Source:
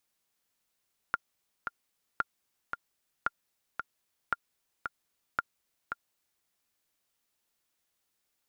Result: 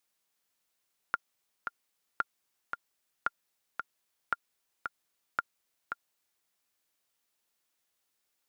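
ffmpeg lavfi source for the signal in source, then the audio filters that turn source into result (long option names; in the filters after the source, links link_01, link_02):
-f lavfi -i "aevalsrc='pow(10,(-14-6.5*gte(mod(t,2*60/113),60/113))/20)*sin(2*PI*1400*mod(t,60/113))*exp(-6.91*mod(t,60/113)/0.03)':duration=5.3:sample_rate=44100"
-af "lowshelf=frequency=210:gain=-6.5"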